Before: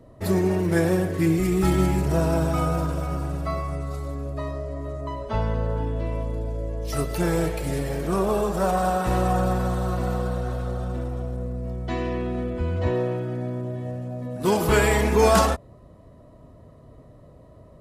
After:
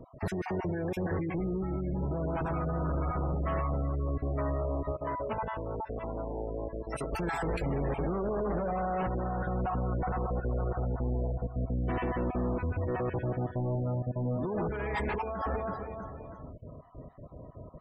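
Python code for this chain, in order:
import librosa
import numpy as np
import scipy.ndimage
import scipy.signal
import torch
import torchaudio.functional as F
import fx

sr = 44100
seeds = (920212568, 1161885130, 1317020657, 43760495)

y = fx.spec_dropout(x, sr, seeds[0], share_pct=21)
y = fx.echo_feedback(y, sr, ms=323, feedback_pct=44, wet_db=-20.0)
y = fx.over_compress(y, sr, threshold_db=-27.0, ratio=-1.0)
y = fx.high_shelf(y, sr, hz=4300.0, db=-11.0)
y = np.clip(y, -10.0 ** (-28.0 / 20.0), 10.0 ** (-28.0 / 20.0))
y = fx.spec_gate(y, sr, threshold_db=-25, keep='strong')
y = fx.low_shelf(y, sr, hz=120.0, db=-11.5, at=(4.92, 7.13))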